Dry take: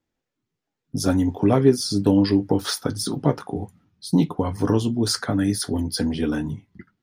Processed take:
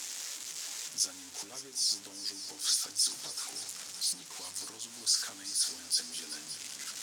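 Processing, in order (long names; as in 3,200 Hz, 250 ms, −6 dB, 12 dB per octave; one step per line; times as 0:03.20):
converter with a step at zero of −23.5 dBFS
downward compressor, threshold −20 dBFS, peak gain reduction 11 dB
resonant band-pass 7,000 Hz, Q 1.8
echo machine with several playback heads 189 ms, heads second and third, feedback 48%, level −13.5 dB
level +1.5 dB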